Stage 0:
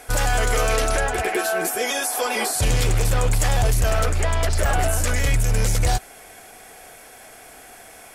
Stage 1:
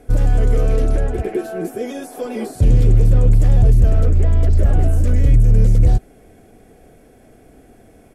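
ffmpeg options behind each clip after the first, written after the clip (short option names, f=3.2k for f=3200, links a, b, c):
-af "firequalizer=gain_entry='entry(260,0);entry(870,-21);entry(5000,-25)':delay=0.05:min_phase=1,volume=8.5dB"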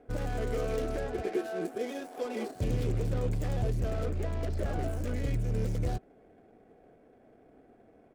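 -af "adynamicsmooth=sensitivity=6.5:basefreq=1.1k,aemphasis=mode=production:type=bsi,volume=-7dB"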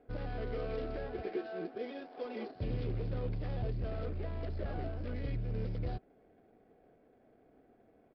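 -af "aresample=11025,aresample=44100,volume=-6dB"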